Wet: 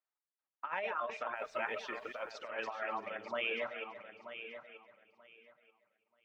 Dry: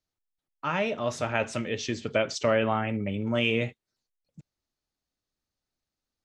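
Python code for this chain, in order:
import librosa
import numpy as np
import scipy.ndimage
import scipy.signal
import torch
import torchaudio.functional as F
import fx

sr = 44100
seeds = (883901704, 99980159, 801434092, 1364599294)

y = fx.reverse_delay_fb(x, sr, ms=167, feedback_pct=49, wet_db=-4)
y = scipy.signal.sosfilt(scipy.signal.butter(2, 1600.0, 'lowpass', fs=sr, output='sos'), y)
y = fx.dereverb_blind(y, sr, rt60_s=1.2)
y = scipy.signal.sosfilt(scipy.signal.butter(2, 930.0, 'highpass', fs=sr, output='sos'), y)
y = fx.over_compress(y, sr, threshold_db=-36.0, ratio=-0.5)
y = fx.dmg_noise_colour(y, sr, seeds[0], colour='pink', level_db=-76.0, at=(1.35, 2.31), fade=0.02)
y = fx.echo_feedback(y, sr, ms=933, feedback_pct=20, wet_db=-10.5)
y = y * 10.0 ** (-1.0 / 20.0)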